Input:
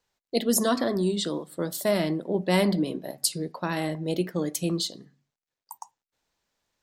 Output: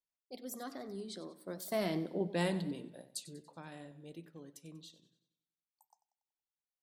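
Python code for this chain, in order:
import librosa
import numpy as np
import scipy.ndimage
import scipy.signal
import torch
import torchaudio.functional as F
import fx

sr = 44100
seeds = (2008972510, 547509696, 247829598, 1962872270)

y = fx.doppler_pass(x, sr, speed_mps=26, closest_m=9.3, pass_at_s=2.06)
y = fx.echo_warbled(y, sr, ms=94, feedback_pct=49, rate_hz=2.8, cents=68, wet_db=-16)
y = y * librosa.db_to_amplitude(-8.0)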